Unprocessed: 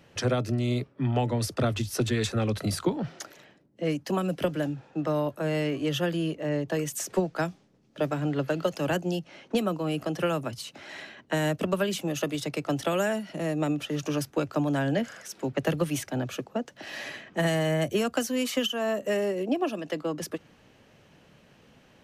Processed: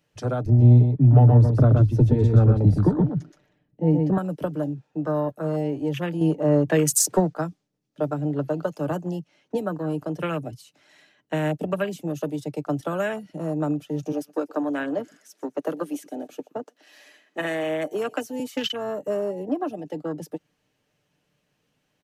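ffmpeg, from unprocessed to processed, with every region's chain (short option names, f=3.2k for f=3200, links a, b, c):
-filter_complex "[0:a]asettb=1/sr,asplit=3[a][b][c];[a]atrim=end=0.464[d];[b]atrim=start=0.46:end=4.18,asetpts=PTS-STARTPTS,afade=t=in:d=0.004:c=qsin,afade=t=out:st=3.716:d=0.004:c=qsin,aemphasis=mode=reproduction:type=riaa,aecho=1:1:124:0.631,atrim=end_sample=164052[e];[c]atrim=start=4.176[f];[d][e]acrossfade=d=0.004:c1=hsin:c2=qsin[g];[g][f]acrossfade=d=0.004:c1=qsin:c2=hsin,asettb=1/sr,asplit=3[h][i][j];[h]atrim=end=6.214[k];[i]atrim=start=6.21:end=7.34,asetpts=PTS-STARTPTS,afade=t=in:d=0.004:c=qsin,afade=t=out:st=1.126:d=0.004:c=qsin,asoftclip=type=hard:threshold=-16.5dB,acontrast=84[l];[j]atrim=start=7.336[m];[k][l]acrossfade=d=0.004:c1=hsin:c2=qsin[n];[n][m]acrossfade=d=0.004:c1=qsin:c2=hsin,asettb=1/sr,asplit=3[o][p][q];[o]atrim=end=14.124[r];[p]atrim=start=14.12:end=18.4,asetpts=PTS-STARTPTS,afade=t=in:d=0.004:c=qsin,afade=t=out:st=4.276:d=0.004:c=qsin,highpass=f=250:w=0.5412,highpass=f=250:w=1.3066,aecho=1:1:121|242|363:0.1|0.043|0.0185,atrim=end_sample=188748[s];[q]atrim=start=18.396[t];[r][s]acrossfade=d=0.004:c1=hsin:c2=qsin[u];[u][t]acrossfade=d=0.004:c1=qsin:c2=hsin,afwtdn=0.0251,highshelf=f=4.8k:g=10,aecho=1:1:6.7:0.36"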